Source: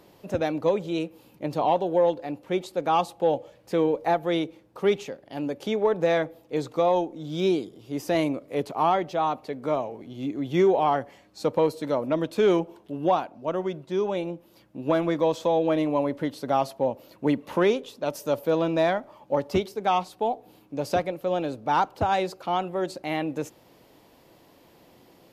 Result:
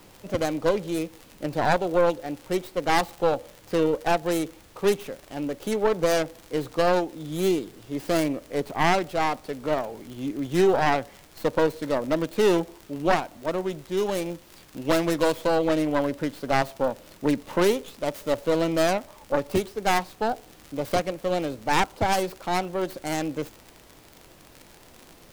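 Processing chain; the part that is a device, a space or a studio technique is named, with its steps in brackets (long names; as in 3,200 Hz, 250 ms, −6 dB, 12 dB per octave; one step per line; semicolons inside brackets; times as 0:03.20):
0:13.97–0:15.33: high-shelf EQ 2,800 Hz +9.5 dB
record under a worn stylus (stylus tracing distortion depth 0.48 ms; surface crackle 62 per second −32 dBFS; pink noise bed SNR 28 dB)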